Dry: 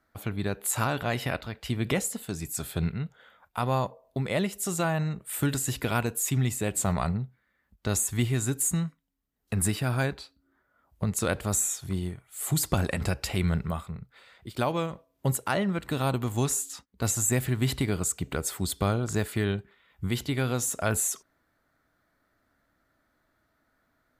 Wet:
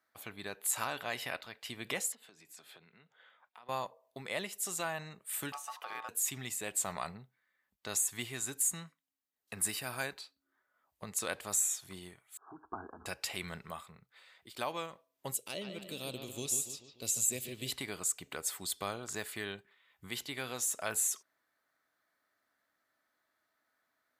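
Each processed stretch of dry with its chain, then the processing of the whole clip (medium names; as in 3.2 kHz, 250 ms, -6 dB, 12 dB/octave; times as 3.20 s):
2.12–3.69 s: three-band isolator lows -17 dB, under 150 Hz, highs -15 dB, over 4.8 kHz + compression 5:1, threshold -45 dBFS
5.52–6.09 s: treble shelf 3.1 kHz -11 dB + compression 3:1, threshold -29 dBFS + ring modulator 1 kHz
9.67–10.21 s: treble shelf 7.8 kHz +8 dB + band-stop 3.4 kHz, Q 16
12.37–13.06 s: brick-wall FIR low-pass 1.7 kHz + static phaser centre 550 Hz, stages 6
15.34–17.72 s: high-order bell 1.2 kHz -15.5 dB + bucket-brigade echo 145 ms, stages 4096, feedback 50%, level -7 dB
whole clip: high-pass 1.1 kHz 6 dB/octave; band-stop 1.4 kHz, Q 15; trim -3.5 dB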